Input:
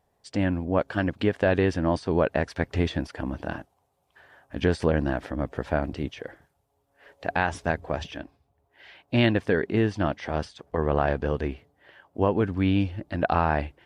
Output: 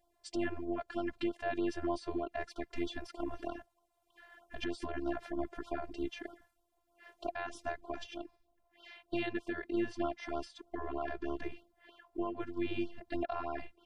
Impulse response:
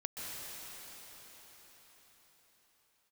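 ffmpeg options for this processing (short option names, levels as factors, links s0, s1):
-af "alimiter=limit=0.0944:level=0:latency=1:release=457,afftfilt=real='hypot(re,im)*cos(PI*b)':imag='0':win_size=512:overlap=0.75,afftfilt=real='re*(1-between(b*sr/1024,240*pow(2100/240,0.5+0.5*sin(2*PI*3.2*pts/sr))/1.41,240*pow(2100/240,0.5+0.5*sin(2*PI*3.2*pts/sr))*1.41))':imag='im*(1-between(b*sr/1024,240*pow(2100/240,0.5+0.5*sin(2*PI*3.2*pts/sr))/1.41,240*pow(2100/240,0.5+0.5*sin(2*PI*3.2*pts/sr))*1.41))':win_size=1024:overlap=0.75"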